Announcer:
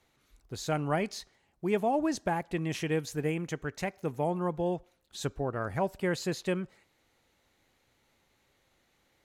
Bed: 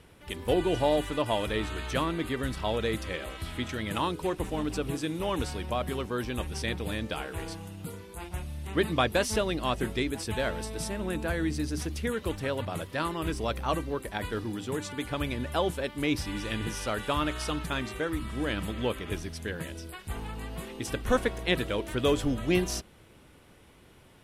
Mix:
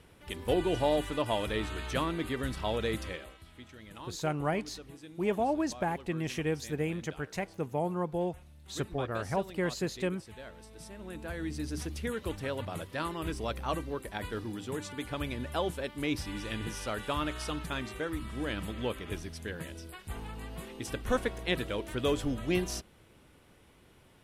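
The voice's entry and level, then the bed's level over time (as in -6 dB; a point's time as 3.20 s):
3.55 s, -1.5 dB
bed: 3.06 s -2.5 dB
3.44 s -17 dB
10.55 s -17 dB
11.73 s -4 dB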